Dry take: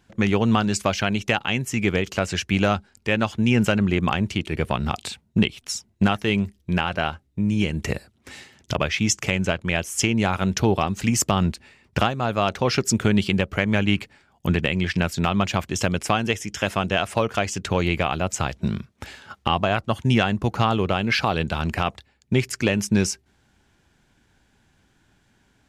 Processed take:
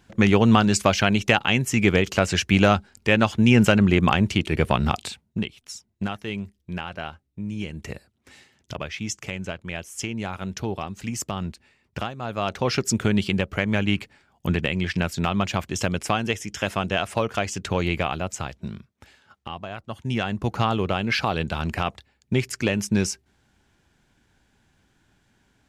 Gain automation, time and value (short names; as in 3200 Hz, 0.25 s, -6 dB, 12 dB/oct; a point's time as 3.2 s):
4.87 s +3 dB
5.46 s -9 dB
12.13 s -9 dB
12.6 s -2 dB
18.05 s -2 dB
19.08 s -13.5 dB
19.72 s -13.5 dB
20.48 s -2 dB